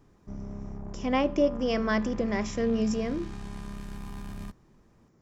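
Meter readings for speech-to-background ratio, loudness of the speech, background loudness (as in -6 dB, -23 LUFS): 13.0 dB, -28.0 LUFS, -41.0 LUFS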